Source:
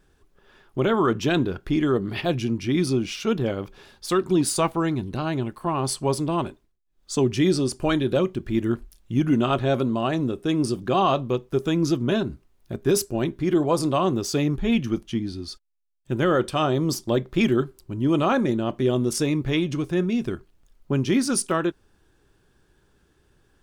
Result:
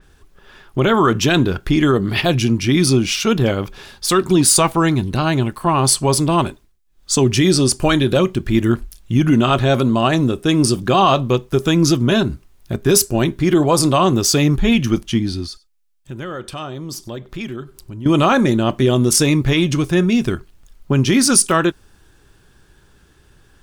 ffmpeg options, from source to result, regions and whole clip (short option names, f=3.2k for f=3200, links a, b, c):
-filter_complex "[0:a]asettb=1/sr,asplit=3[a][b][c];[a]atrim=end=15.464[d];[b]atrim=start=15.46:end=18.06,asetpts=PTS-STARTPTS,afade=t=in:d=0.004:c=qsin,afade=t=out:st=2.596:d=0.004:c=qsin,acompressor=threshold=-47dB:ratio=2:attack=3.2:release=140:knee=1:detection=peak,aecho=1:1:96:0.0631,atrim=end_sample=114660[e];[c]atrim=start=18.056[f];[d][e]acrossfade=d=0.004:c1=hsin:c2=qsin[g];[g][f]acrossfade=d=0.004:c1=qsin:c2=hsin,equalizer=f=390:t=o:w=2.4:g=-5,alimiter=level_in=16dB:limit=-1dB:release=50:level=0:latency=1,adynamicequalizer=threshold=0.0501:dfrequency=5000:dqfactor=0.7:tfrequency=5000:tqfactor=0.7:attack=5:release=100:ratio=0.375:range=2:mode=boostabove:tftype=highshelf,volume=-4dB"